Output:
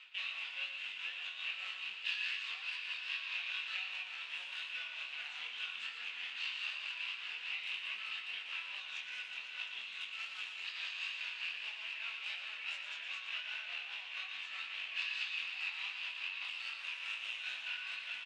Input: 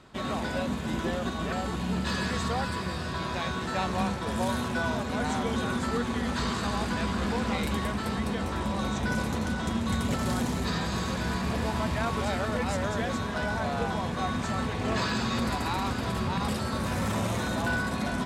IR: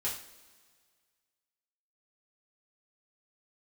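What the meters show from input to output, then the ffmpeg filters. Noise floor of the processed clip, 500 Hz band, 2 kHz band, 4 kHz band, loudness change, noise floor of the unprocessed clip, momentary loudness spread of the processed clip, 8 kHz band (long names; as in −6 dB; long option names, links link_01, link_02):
−48 dBFS, −36.0 dB, −5.0 dB, −2.5 dB, −10.0 dB, −33 dBFS, 4 LU, −20.5 dB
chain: -af "highshelf=frequency=8000:gain=-4.5,alimiter=level_in=3.5dB:limit=-24dB:level=0:latency=1:release=307,volume=-3.5dB,flanger=delay=8.5:depth=5.6:regen=54:speed=0.11:shape=triangular,tremolo=f=4.8:d=0.62,aeval=exprs='clip(val(0),-1,0.00422)':channel_layout=same,flanger=delay=19.5:depth=6.1:speed=2.5,adynamicsmooth=sensitivity=6:basefreq=3900,highpass=frequency=2700:width_type=q:width=9.3,aecho=1:1:117:0.422,volume=10dB"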